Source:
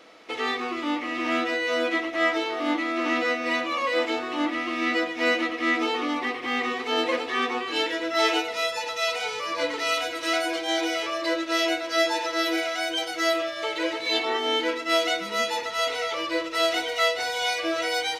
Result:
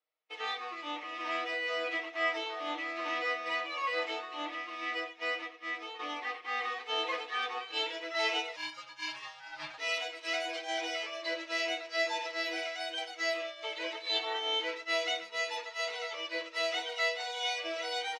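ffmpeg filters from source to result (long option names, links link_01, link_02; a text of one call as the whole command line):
ffmpeg -i in.wav -filter_complex "[0:a]asettb=1/sr,asplit=3[link_01][link_02][link_03];[link_01]atrim=end=8.564[link_04];[link_02]atrim=start=8.56:end=9.78,asetpts=PTS-STARTPTS,afade=type=in:duration=0.004:curve=qsin,afade=type=out:start_time=1.216:duration=0.004:curve=qsin,aeval=exprs='val(0)*sin(2*PI*350*n/s)':channel_layout=same[link_05];[link_03]atrim=start=9.776[link_06];[link_04][link_05]acrossfade=duration=0.004:curve1=hsin:curve2=qsin[link_07];[link_07][link_06]acrossfade=duration=0.004:curve1=qsin:curve2=hsin,asplit=2[link_08][link_09];[link_08]atrim=end=5.99,asetpts=PTS-STARTPTS,afade=type=out:start_time=4.2:duration=1.79:silence=0.473151[link_10];[link_09]atrim=start=5.99,asetpts=PTS-STARTPTS,afade=type=in:duration=0.004:curve=hsin:silence=0.473151[link_11];[link_10][link_11]concat=n=2:v=0:a=1,aecho=1:1:6.5:0.66,agate=range=-33dB:threshold=-25dB:ratio=3:detection=peak,acrossover=split=480 7500:gain=0.0794 1 0.126[link_12][link_13][link_14];[link_12][link_13][link_14]amix=inputs=3:normalize=0,volume=-8.5dB" out.wav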